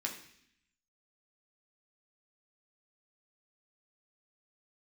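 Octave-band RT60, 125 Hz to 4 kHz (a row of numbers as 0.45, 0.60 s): 0.95, 0.95, 0.70, 0.65, 0.90, 0.85 s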